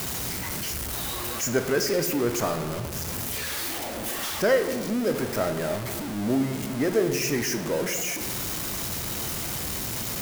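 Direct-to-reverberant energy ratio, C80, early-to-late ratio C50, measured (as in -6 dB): 6.5 dB, 10.5 dB, 8.5 dB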